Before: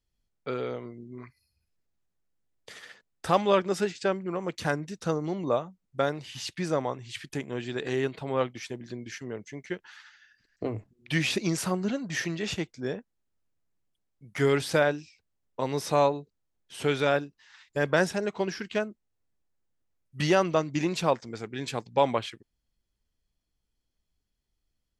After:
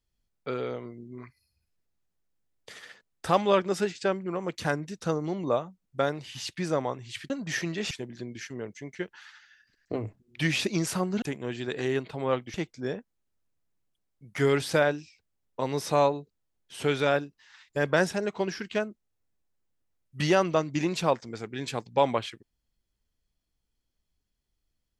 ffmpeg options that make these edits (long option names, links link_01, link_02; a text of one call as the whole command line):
ffmpeg -i in.wav -filter_complex "[0:a]asplit=5[link_01][link_02][link_03][link_04][link_05];[link_01]atrim=end=7.302[link_06];[link_02]atrim=start=11.928:end=12.542[link_07];[link_03]atrim=start=8.618:end=11.932[link_08];[link_04]atrim=start=7.298:end=8.622[link_09];[link_05]atrim=start=12.538[link_10];[link_06][link_07]acrossfade=duration=0.004:curve1=hsin:curve2=hsin[link_11];[link_11][link_08]acrossfade=duration=0.004:curve1=hsin:curve2=hsin[link_12];[link_12][link_09]acrossfade=duration=0.004:curve1=hsin:curve2=hsin[link_13];[link_13][link_10]acrossfade=duration=0.004:curve1=hsin:curve2=hsin" out.wav